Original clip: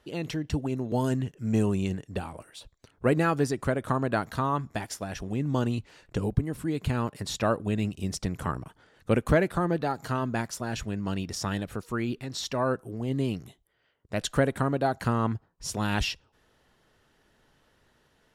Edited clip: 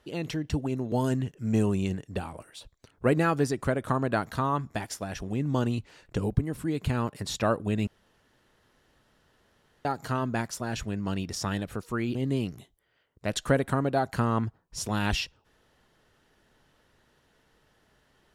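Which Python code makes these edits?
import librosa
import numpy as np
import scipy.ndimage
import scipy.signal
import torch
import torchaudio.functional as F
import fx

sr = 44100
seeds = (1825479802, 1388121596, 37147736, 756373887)

y = fx.edit(x, sr, fx.room_tone_fill(start_s=7.87, length_s=1.98),
    fx.cut(start_s=12.15, length_s=0.88), tone=tone)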